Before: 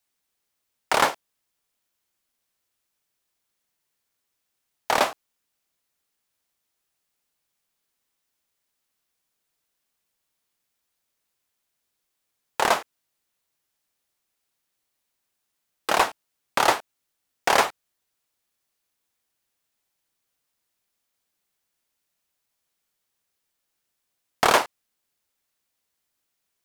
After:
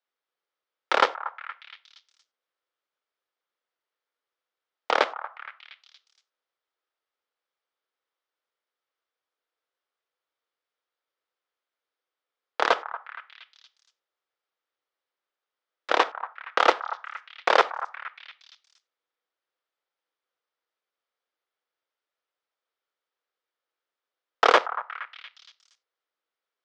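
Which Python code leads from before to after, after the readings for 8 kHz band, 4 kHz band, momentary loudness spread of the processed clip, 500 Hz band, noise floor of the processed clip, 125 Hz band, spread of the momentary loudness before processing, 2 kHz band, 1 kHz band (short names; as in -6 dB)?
-14.0 dB, -2.0 dB, 19 LU, +0.5 dB, under -85 dBFS, under -20 dB, 10 LU, 0.0 dB, -0.5 dB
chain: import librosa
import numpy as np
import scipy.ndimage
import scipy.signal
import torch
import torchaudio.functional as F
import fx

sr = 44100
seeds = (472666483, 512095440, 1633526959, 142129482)

y = fx.cheby_harmonics(x, sr, harmonics=(7,), levels_db=(-13,), full_scale_db=-4.5)
y = fx.cabinet(y, sr, low_hz=330.0, low_slope=24, high_hz=4400.0, hz=(500.0, 1300.0, 2600.0, 4200.0), db=(6, 5, -4, -4))
y = fx.echo_stepped(y, sr, ms=234, hz=1100.0, octaves=0.7, feedback_pct=70, wet_db=-11)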